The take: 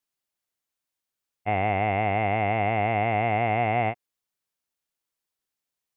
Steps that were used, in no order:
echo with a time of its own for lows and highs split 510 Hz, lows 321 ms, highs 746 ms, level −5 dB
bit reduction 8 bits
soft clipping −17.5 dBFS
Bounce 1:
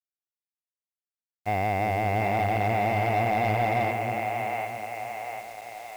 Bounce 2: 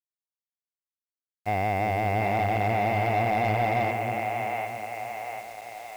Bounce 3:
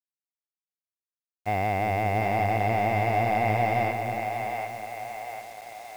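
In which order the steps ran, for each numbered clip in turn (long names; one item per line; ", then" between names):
echo with a time of its own for lows and highs, then soft clipping, then bit reduction
echo with a time of its own for lows and highs, then bit reduction, then soft clipping
soft clipping, then echo with a time of its own for lows and highs, then bit reduction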